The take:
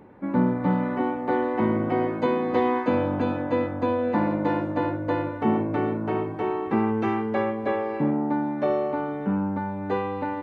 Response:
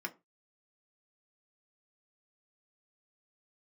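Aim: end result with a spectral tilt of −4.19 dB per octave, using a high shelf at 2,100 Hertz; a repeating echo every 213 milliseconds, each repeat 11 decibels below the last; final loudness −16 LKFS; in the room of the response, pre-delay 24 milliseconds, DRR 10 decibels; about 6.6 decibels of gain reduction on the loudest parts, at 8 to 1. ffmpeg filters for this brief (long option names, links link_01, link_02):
-filter_complex "[0:a]highshelf=frequency=2100:gain=4.5,acompressor=threshold=-24dB:ratio=8,aecho=1:1:213|426|639:0.282|0.0789|0.0221,asplit=2[link_01][link_02];[1:a]atrim=start_sample=2205,adelay=24[link_03];[link_02][link_03]afir=irnorm=-1:irlink=0,volume=-11.5dB[link_04];[link_01][link_04]amix=inputs=2:normalize=0,volume=12.5dB"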